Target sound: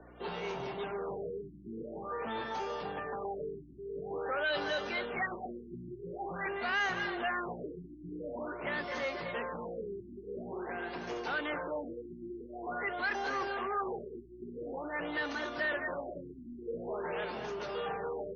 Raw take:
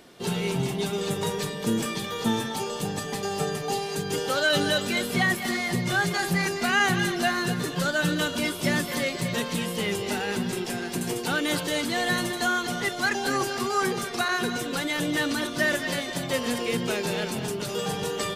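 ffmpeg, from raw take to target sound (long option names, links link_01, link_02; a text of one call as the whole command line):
ffmpeg -i in.wav -filter_complex "[0:a]aeval=exprs='val(0)+0.01*(sin(2*PI*60*n/s)+sin(2*PI*2*60*n/s)/2+sin(2*PI*3*60*n/s)/3+sin(2*PI*4*60*n/s)/4+sin(2*PI*5*60*n/s)/5)':channel_layout=same,acrossover=split=110|2400[link_01][link_02][link_03];[link_02]asoftclip=type=tanh:threshold=-29.5dB[link_04];[link_01][link_04][link_03]amix=inputs=3:normalize=0,afftfilt=real='re*gte(hypot(re,im),0.00224)':imag='im*gte(hypot(re,im),0.00224)':win_size=1024:overlap=0.75,acrossover=split=370 2100:gain=0.126 1 0.158[link_05][link_06][link_07];[link_05][link_06][link_07]amix=inputs=3:normalize=0,afftfilt=real='re*lt(b*sr/1024,370*pow(6800/370,0.5+0.5*sin(2*PI*0.47*pts/sr)))':imag='im*lt(b*sr/1024,370*pow(6800/370,0.5+0.5*sin(2*PI*0.47*pts/sr)))':win_size=1024:overlap=0.75" out.wav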